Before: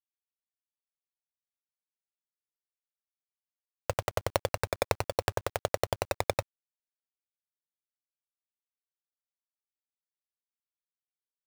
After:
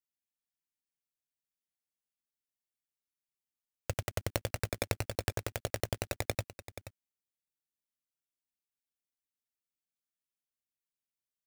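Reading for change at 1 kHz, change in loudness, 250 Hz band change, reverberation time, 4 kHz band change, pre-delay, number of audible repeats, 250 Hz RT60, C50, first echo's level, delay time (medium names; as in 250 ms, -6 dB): -9.5 dB, -4.5 dB, +0.5 dB, no reverb, -3.0 dB, no reverb, 1, no reverb, no reverb, -13.0 dB, 479 ms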